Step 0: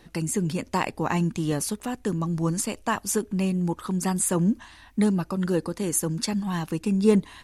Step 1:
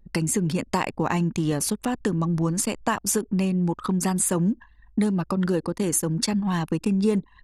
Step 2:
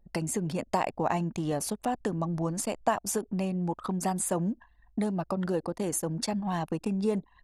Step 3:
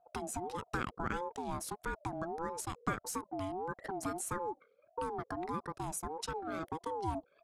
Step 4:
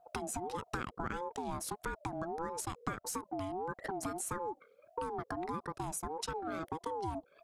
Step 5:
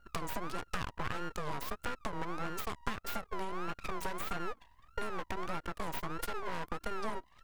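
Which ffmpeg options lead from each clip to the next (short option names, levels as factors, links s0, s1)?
-af "anlmdn=1,acompressor=threshold=0.0282:ratio=3,volume=2.66"
-af "equalizer=f=680:t=o:w=0.74:g=12,volume=0.398"
-af "aeval=exprs='val(0)*sin(2*PI*590*n/s+590*0.2/1.6*sin(2*PI*1.6*n/s))':c=same,volume=0.501"
-af "acompressor=threshold=0.00794:ratio=3,volume=1.88"
-af "aeval=exprs='abs(val(0))':c=same,volume=1.41"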